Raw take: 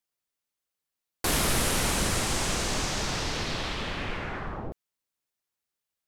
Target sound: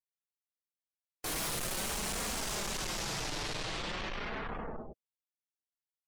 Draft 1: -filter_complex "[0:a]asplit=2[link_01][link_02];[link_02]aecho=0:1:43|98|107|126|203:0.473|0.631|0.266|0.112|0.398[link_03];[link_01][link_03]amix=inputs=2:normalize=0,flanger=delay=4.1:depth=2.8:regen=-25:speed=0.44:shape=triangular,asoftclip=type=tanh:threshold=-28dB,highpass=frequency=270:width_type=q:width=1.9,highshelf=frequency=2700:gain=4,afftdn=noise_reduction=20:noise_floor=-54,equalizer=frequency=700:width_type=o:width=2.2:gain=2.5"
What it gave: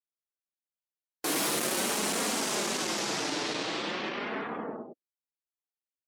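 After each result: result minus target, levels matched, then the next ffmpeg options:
soft clipping: distortion −5 dB; 250 Hz band +3.0 dB
-filter_complex "[0:a]asplit=2[link_01][link_02];[link_02]aecho=0:1:43|98|107|126|203:0.473|0.631|0.266|0.112|0.398[link_03];[link_01][link_03]amix=inputs=2:normalize=0,flanger=delay=4.1:depth=2.8:regen=-25:speed=0.44:shape=triangular,asoftclip=type=tanh:threshold=-36.5dB,highpass=frequency=270:width_type=q:width=1.9,highshelf=frequency=2700:gain=4,afftdn=noise_reduction=20:noise_floor=-54,equalizer=frequency=700:width_type=o:width=2.2:gain=2.5"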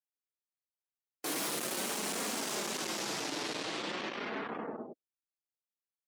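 250 Hz band +3.0 dB
-filter_complex "[0:a]asplit=2[link_01][link_02];[link_02]aecho=0:1:43|98|107|126|203:0.473|0.631|0.266|0.112|0.398[link_03];[link_01][link_03]amix=inputs=2:normalize=0,flanger=delay=4.1:depth=2.8:regen=-25:speed=0.44:shape=triangular,asoftclip=type=tanh:threshold=-36.5dB,highshelf=frequency=2700:gain=4,afftdn=noise_reduction=20:noise_floor=-54,equalizer=frequency=700:width_type=o:width=2.2:gain=2.5"

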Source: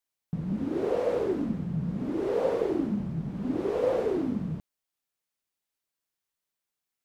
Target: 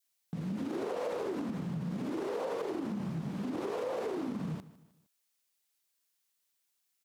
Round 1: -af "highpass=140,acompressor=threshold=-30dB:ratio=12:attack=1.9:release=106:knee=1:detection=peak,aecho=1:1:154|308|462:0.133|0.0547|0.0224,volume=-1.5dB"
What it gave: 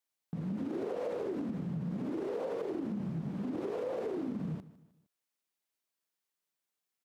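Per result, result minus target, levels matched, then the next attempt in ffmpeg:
4,000 Hz band −6.5 dB; 1,000 Hz band −4.5 dB
-af "highpass=140,acompressor=threshold=-30dB:ratio=12:attack=1.9:release=106:knee=1:detection=peak,highshelf=frequency=2100:gain=10.5,aecho=1:1:154|308|462:0.133|0.0547|0.0224,volume=-1.5dB"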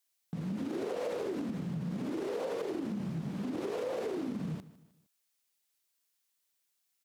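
1,000 Hz band −3.0 dB
-af "highpass=140,adynamicequalizer=threshold=0.00708:dfrequency=1000:dqfactor=1.3:tfrequency=1000:tqfactor=1.3:attack=5:release=100:ratio=0.438:range=3:mode=boostabove:tftype=bell,acompressor=threshold=-30dB:ratio=12:attack=1.9:release=106:knee=1:detection=peak,highshelf=frequency=2100:gain=10.5,aecho=1:1:154|308|462:0.133|0.0547|0.0224,volume=-1.5dB"

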